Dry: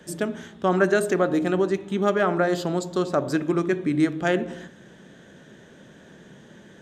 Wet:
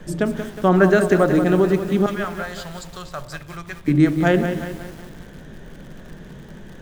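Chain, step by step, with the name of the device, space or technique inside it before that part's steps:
0:02.06–0:03.88: guitar amp tone stack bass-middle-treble 10-0-10
car interior (parametric band 150 Hz +7.5 dB 0.63 octaves; high-shelf EQ 4,500 Hz −8 dB; brown noise bed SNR 20 dB)
feedback echo at a low word length 182 ms, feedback 55%, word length 7 bits, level −8.5 dB
level +4.5 dB

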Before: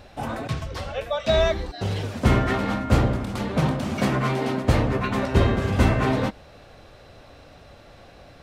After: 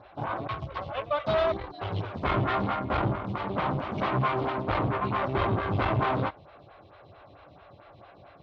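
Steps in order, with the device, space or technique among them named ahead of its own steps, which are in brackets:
vibe pedal into a guitar amplifier (phaser with staggered stages 4.5 Hz; tube saturation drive 26 dB, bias 0.8; loudspeaker in its box 77–3,500 Hz, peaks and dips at 110 Hz +4 dB, 240 Hz −10 dB, 480 Hz −7 dB, 1,100 Hz +4 dB, 1,800 Hz −5 dB, 2,700 Hz −3 dB)
level +6 dB

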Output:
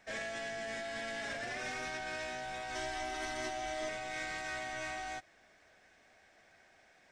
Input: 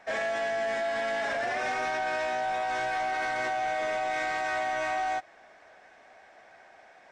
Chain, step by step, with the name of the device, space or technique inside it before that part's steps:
0:02.75–0:03.89: comb filter 3 ms, depth 96%
smiley-face EQ (low-shelf EQ 170 Hz +7.5 dB; parametric band 820 Hz −9 dB 1.7 octaves; high-shelf EQ 5,300 Hz +7 dB)
level −5.5 dB

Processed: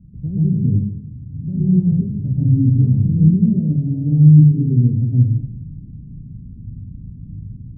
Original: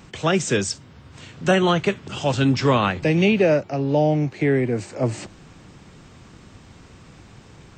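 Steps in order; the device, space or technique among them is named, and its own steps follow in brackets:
club heard from the street (brickwall limiter −13.5 dBFS, peak gain reduction 9 dB; low-pass filter 190 Hz 24 dB per octave; convolution reverb RT60 0.75 s, pre-delay 112 ms, DRR −7.5 dB)
level +5 dB

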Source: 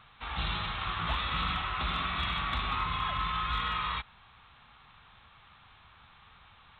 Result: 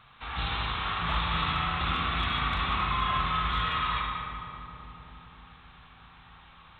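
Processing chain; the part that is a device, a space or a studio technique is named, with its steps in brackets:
dub delay into a spring reverb (feedback echo with a low-pass in the loop 264 ms, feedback 77%, low-pass 1,200 Hz, level −8 dB; spring reverb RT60 1.7 s, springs 36/56 ms, chirp 20 ms, DRR −0.5 dB)

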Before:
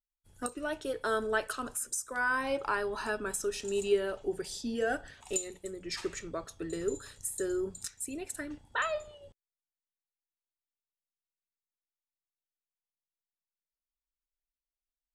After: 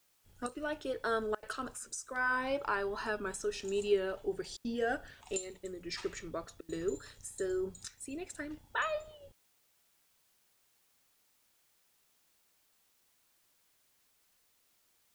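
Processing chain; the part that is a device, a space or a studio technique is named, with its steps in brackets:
worn cassette (low-pass filter 6,600 Hz 12 dB per octave; tape wow and flutter; tape dropouts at 0:01.35/0:04.57/0:06.61, 76 ms −27 dB; white noise bed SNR 33 dB)
level −2 dB

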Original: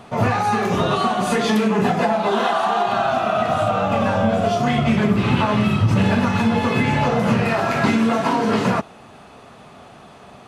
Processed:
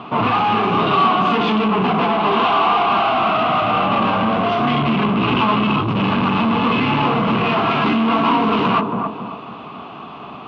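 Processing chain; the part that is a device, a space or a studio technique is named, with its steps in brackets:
analogue delay pedal into a guitar amplifier (bucket-brigade delay 271 ms, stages 2,048, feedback 36%, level −9.5 dB; tube saturation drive 24 dB, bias 0.4; loudspeaker in its box 90–3,500 Hz, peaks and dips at 96 Hz −9 dB, 300 Hz +6 dB, 550 Hz −6 dB, 1,100 Hz +10 dB, 1,800 Hz −9 dB, 2,800 Hz +7 dB)
level +8.5 dB

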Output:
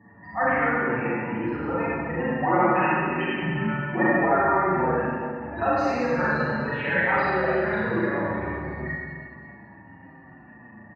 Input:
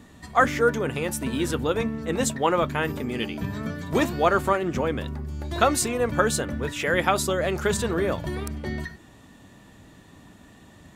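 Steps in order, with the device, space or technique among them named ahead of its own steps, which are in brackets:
barber-pole flanger into a guitar amplifier (barber-pole flanger 6.6 ms −0.74 Hz; soft clipping −19 dBFS, distortion −14 dB; loudspeaker in its box 98–4,100 Hz, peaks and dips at 110 Hz +4 dB, 440 Hz −4 dB, 850 Hz +8 dB, 1,800 Hz +7 dB, 3,500 Hz −9 dB)
gate on every frequency bin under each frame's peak −20 dB strong
0:02.36–0:04.18: comb filter 5.5 ms, depth 100%
four-comb reverb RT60 2 s, combs from 33 ms, DRR −9 dB
level −4.5 dB

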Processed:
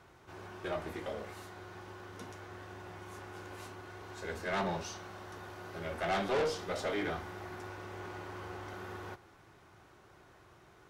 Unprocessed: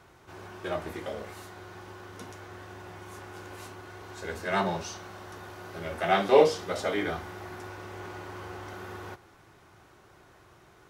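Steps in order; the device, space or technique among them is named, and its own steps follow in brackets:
tube preamp driven hard (tube saturation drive 26 dB, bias 0.35; high-shelf EQ 7,000 Hz −4 dB)
level −2 dB

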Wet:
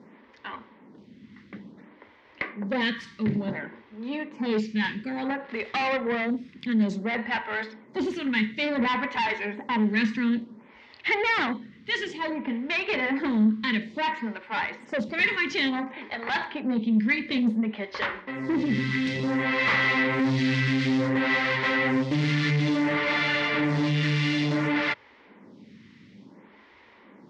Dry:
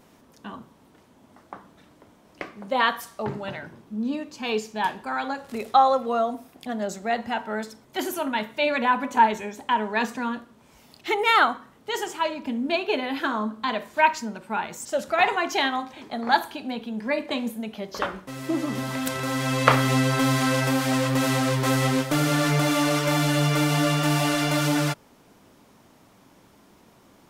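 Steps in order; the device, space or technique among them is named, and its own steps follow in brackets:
vibe pedal into a guitar amplifier (phaser with staggered stages 0.57 Hz; tube saturation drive 29 dB, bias 0.4; loudspeaker in its box 85–4,400 Hz, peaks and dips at 210 Hz +8 dB, 690 Hz −10 dB, 1,300 Hz −5 dB, 2,000 Hz +10 dB)
level +7 dB

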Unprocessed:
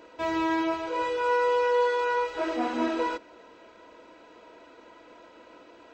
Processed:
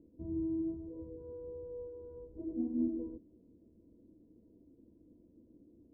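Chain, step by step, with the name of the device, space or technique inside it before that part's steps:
the neighbour's flat through the wall (low-pass filter 260 Hz 24 dB per octave; parametric band 81 Hz +4.5 dB 0.77 octaves)
level +2 dB

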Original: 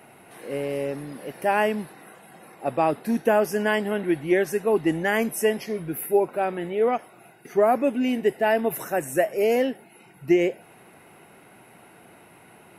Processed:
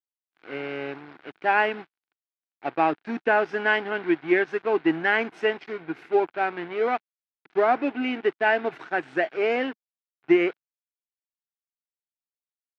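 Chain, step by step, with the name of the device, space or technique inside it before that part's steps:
low-shelf EQ 110 Hz −4.5 dB
blown loudspeaker (dead-zone distortion −37.5 dBFS; loudspeaker in its box 160–4,100 Hz, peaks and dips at 210 Hz −7 dB, 320 Hz +4 dB, 550 Hz −8 dB, 800 Hz +3 dB, 1,500 Hz +8 dB, 2,300 Hz +4 dB)

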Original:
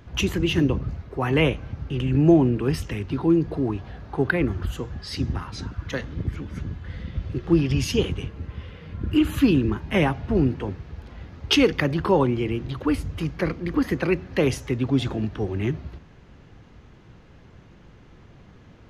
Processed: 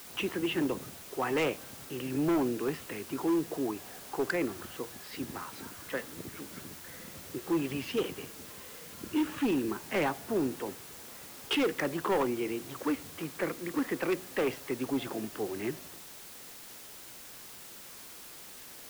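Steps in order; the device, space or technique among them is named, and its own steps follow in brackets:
aircraft radio (band-pass filter 320–2,500 Hz; hard clipping −20 dBFS, distortion −11 dB; white noise bed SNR 14 dB)
level −4 dB

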